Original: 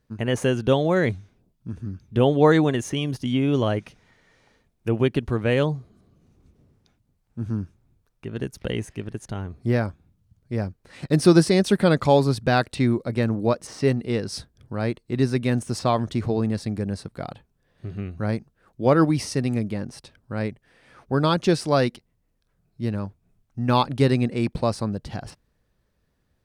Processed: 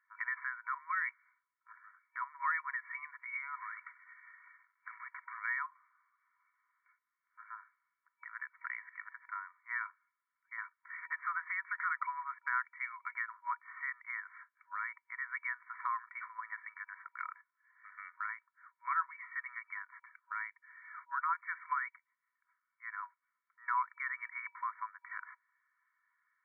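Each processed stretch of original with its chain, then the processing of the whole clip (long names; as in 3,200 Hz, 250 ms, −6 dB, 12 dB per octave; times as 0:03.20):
0:03.55–0:05.38: variable-slope delta modulation 16 kbit/s + downward compressor 4 to 1, threshold −30 dBFS
whole clip: brick-wall band-pass 960–2,300 Hz; comb filter 2.2 ms, depth 45%; downward compressor 2 to 1, threshold −43 dBFS; level +3.5 dB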